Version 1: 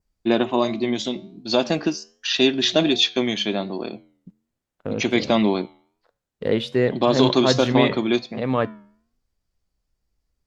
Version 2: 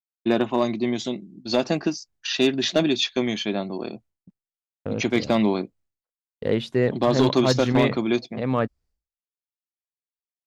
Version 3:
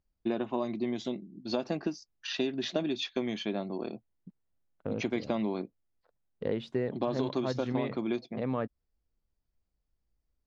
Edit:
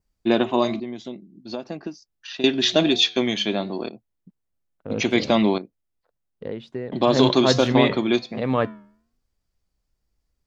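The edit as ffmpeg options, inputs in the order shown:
-filter_complex "[2:a]asplit=3[s0][s1][s2];[0:a]asplit=4[s3][s4][s5][s6];[s3]atrim=end=0.802[s7];[s0]atrim=start=0.798:end=2.442[s8];[s4]atrim=start=2.438:end=3.892[s9];[s1]atrim=start=3.888:end=4.902[s10];[s5]atrim=start=4.898:end=5.582[s11];[s2]atrim=start=5.578:end=6.922[s12];[s6]atrim=start=6.918[s13];[s7][s8]acrossfade=d=0.004:c1=hsin:c2=hsin[s14];[s14][s9]acrossfade=d=0.004:c1=hsin:c2=hsin[s15];[s15][s10]acrossfade=d=0.004:c1=hsin:c2=hsin[s16];[s16][s11]acrossfade=d=0.004:c1=hsin:c2=hsin[s17];[s17][s12]acrossfade=d=0.004:c1=hsin:c2=hsin[s18];[s18][s13]acrossfade=d=0.004:c1=hsin:c2=hsin"

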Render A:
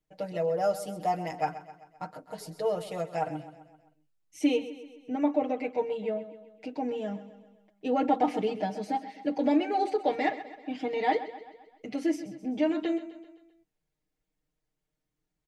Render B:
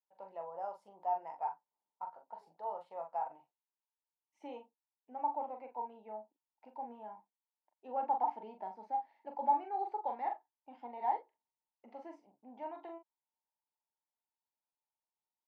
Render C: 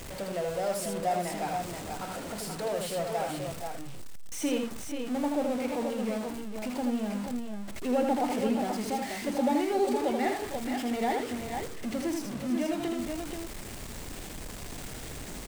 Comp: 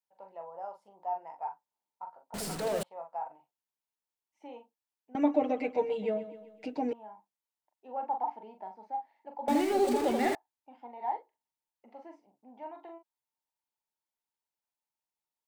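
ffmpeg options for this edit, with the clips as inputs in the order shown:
-filter_complex "[2:a]asplit=2[s0][s1];[1:a]asplit=4[s2][s3][s4][s5];[s2]atrim=end=2.342[s6];[s0]atrim=start=2.338:end=2.832[s7];[s3]atrim=start=2.828:end=5.152[s8];[0:a]atrim=start=5.148:end=6.932[s9];[s4]atrim=start=6.928:end=9.482[s10];[s1]atrim=start=9.478:end=10.352[s11];[s5]atrim=start=10.348[s12];[s6][s7]acrossfade=d=0.004:c1=hsin:c2=hsin[s13];[s13][s8]acrossfade=d=0.004:c1=hsin:c2=hsin[s14];[s14][s9]acrossfade=d=0.004:c1=hsin:c2=hsin[s15];[s15][s10]acrossfade=d=0.004:c1=hsin:c2=hsin[s16];[s16][s11]acrossfade=d=0.004:c1=hsin:c2=hsin[s17];[s17][s12]acrossfade=d=0.004:c1=hsin:c2=hsin"

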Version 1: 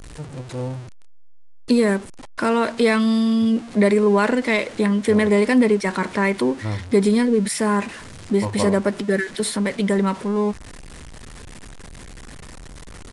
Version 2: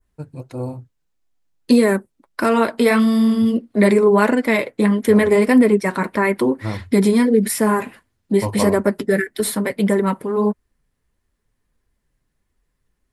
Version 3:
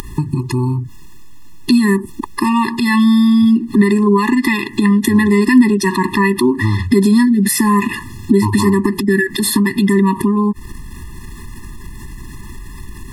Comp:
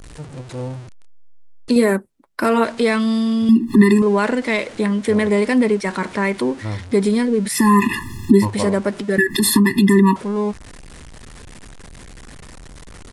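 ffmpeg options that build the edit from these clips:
-filter_complex "[2:a]asplit=3[s0][s1][s2];[0:a]asplit=5[s3][s4][s5][s6][s7];[s3]atrim=end=1.762[s8];[1:a]atrim=start=1.758:end=2.642[s9];[s4]atrim=start=2.638:end=3.492[s10];[s0]atrim=start=3.488:end=4.022[s11];[s5]atrim=start=4.018:end=7.65[s12];[s1]atrim=start=7.49:end=8.52[s13];[s6]atrim=start=8.36:end=9.182[s14];[s2]atrim=start=9.178:end=10.162[s15];[s7]atrim=start=10.158[s16];[s8][s9]acrossfade=d=0.004:c1=hsin:c2=hsin[s17];[s17][s10]acrossfade=d=0.004:c1=hsin:c2=hsin[s18];[s18][s11]acrossfade=d=0.004:c1=hsin:c2=hsin[s19];[s19][s12]acrossfade=d=0.004:c1=hsin:c2=hsin[s20];[s20][s13]acrossfade=d=0.16:c1=tri:c2=tri[s21];[s21][s14]acrossfade=d=0.16:c1=tri:c2=tri[s22];[s22][s15]acrossfade=d=0.004:c1=hsin:c2=hsin[s23];[s23][s16]acrossfade=d=0.004:c1=hsin:c2=hsin"

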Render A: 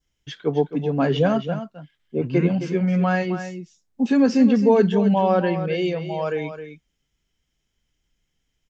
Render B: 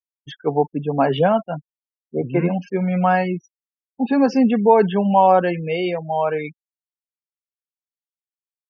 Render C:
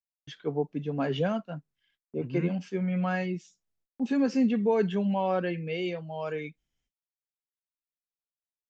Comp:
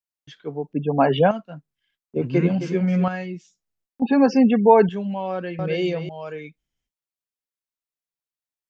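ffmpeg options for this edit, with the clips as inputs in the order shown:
-filter_complex "[1:a]asplit=2[s0][s1];[0:a]asplit=2[s2][s3];[2:a]asplit=5[s4][s5][s6][s7][s8];[s4]atrim=end=0.732[s9];[s0]atrim=start=0.728:end=1.312[s10];[s5]atrim=start=1.308:end=2.162[s11];[s2]atrim=start=2.158:end=3.082[s12];[s6]atrim=start=3.078:end=4.022[s13];[s1]atrim=start=4.018:end=4.892[s14];[s7]atrim=start=4.888:end=5.592[s15];[s3]atrim=start=5.588:end=6.092[s16];[s8]atrim=start=6.088[s17];[s9][s10]acrossfade=d=0.004:c1=hsin:c2=hsin[s18];[s18][s11]acrossfade=d=0.004:c1=hsin:c2=hsin[s19];[s19][s12]acrossfade=d=0.004:c1=hsin:c2=hsin[s20];[s20][s13]acrossfade=d=0.004:c1=hsin:c2=hsin[s21];[s21][s14]acrossfade=d=0.004:c1=hsin:c2=hsin[s22];[s22][s15]acrossfade=d=0.004:c1=hsin:c2=hsin[s23];[s23][s16]acrossfade=d=0.004:c1=hsin:c2=hsin[s24];[s24][s17]acrossfade=d=0.004:c1=hsin:c2=hsin"

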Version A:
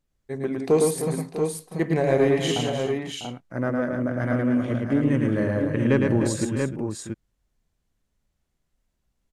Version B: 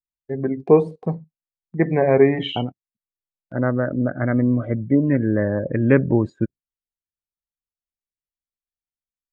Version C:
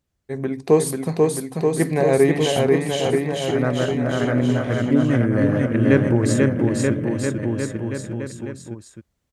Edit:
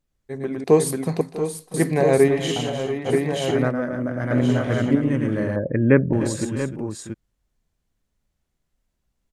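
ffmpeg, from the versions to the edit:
-filter_complex "[2:a]asplit=4[s0][s1][s2][s3];[0:a]asplit=6[s4][s5][s6][s7][s8][s9];[s4]atrim=end=0.642[s10];[s0]atrim=start=0.638:end=1.212[s11];[s5]atrim=start=1.208:end=1.742[s12];[s1]atrim=start=1.738:end=2.282[s13];[s6]atrim=start=2.278:end=3.1[s14];[s2]atrim=start=3.04:end=3.73[s15];[s7]atrim=start=3.67:end=4.312[s16];[s3]atrim=start=4.308:end=4.952[s17];[s8]atrim=start=4.948:end=5.562[s18];[1:a]atrim=start=5.558:end=6.132[s19];[s9]atrim=start=6.128[s20];[s10][s11]acrossfade=d=0.004:c1=hsin:c2=hsin[s21];[s21][s12]acrossfade=d=0.004:c1=hsin:c2=hsin[s22];[s22][s13]acrossfade=d=0.004:c1=hsin:c2=hsin[s23];[s23][s14]acrossfade=d=0.004:c1=hsin:c2=hsin[s24];[s24][s15]acrossfade=d=0.06:c1=tri:c2=tri[s25];[s25][s16]acrossfade=d=0.06:c1=tri:c2=tri[s26];[s26][s17]acrossfade=d=0.004:c1=hsin:c2=hsin[s27];[s27][s18]acrossfade=d=0.004:c1=hsin:c2=hsin[s28];[s28][s19]acrossfade=d=0.004:c1=hsin:c2=hsin[s29];[s29][s20]acrossfade=d=0.004:c1=hsin:c2=hsin"

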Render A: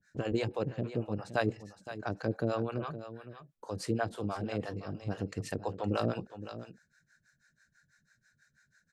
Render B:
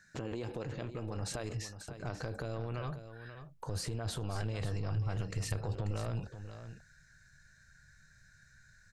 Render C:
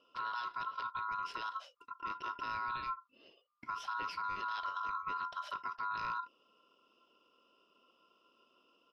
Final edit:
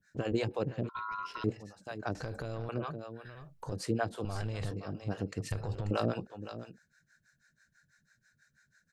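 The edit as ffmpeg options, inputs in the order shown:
-filter_complex "[1:a]asplit=4[s0][s1][s2][s3];[0:a]asplit=6[s4][s5][s6][s7][s8][s9];[s4]atrim=end=0.892[s10];[2:a]atrim=start=0.888:end=1.442[s11];[s5]atrim=start=1.438:end=2.152[s12];[s0]atrim=start=2.148:end=2.692[s13];[s6]atrim=start=2.688:end=3.252[s14];[s1]atrim=start=3.248:end=3.722[s15];[s7]atrim=start=3.718:end=4.252[s16];[s2]atrim=start=4.248:end=4.712[s17];[s8]atrim=start=4.708:end=5.512[s18];[s3]atrim=start=5.508:end=5.912[s19];[s9]atrim=start=5.908[s20];[s10][s11]acrossfade=d=0.004:c1=hsin:c2=hsin[s21];[s21][s12]acrossfade=d=0.004:c1=hsin:c2=hsin[s22];[s22][s13]acrossfade=d=0.004:c1=hsin:c2=hsin[s23];[s23][s14]acrossfade=d=0.004:c1=hsin:c2=hsin[s24];[s24][s15]acrossfade=d=0.004:c1=hsin:c2=hsin[s25];[s25][s16]acrossfade=d=0.004:c1=hsin:c2=hsin[s26];[s26][s17]acrossfade=d=0.004:c1=hsin:c2=hsin[s27];[s27][s18]acrossfade=d=0.004:c1=hsin:c2=hsin[s28];[s28][s19]acrossfade=d=0.004:c1=hsin:c2=hsin[s29];[s29][s20]acrossfade=d=0.004:c1=hsin:c2=hsin"

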